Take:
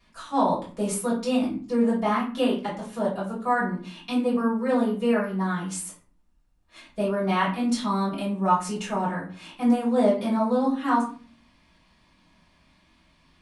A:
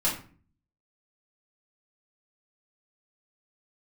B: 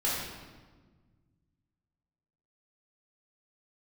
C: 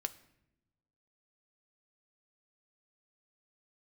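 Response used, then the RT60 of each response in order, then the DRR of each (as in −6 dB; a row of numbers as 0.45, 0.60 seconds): A; 0.40, 1.4, 0.85 seconds; −8.5, −8.0, 8.0 decibels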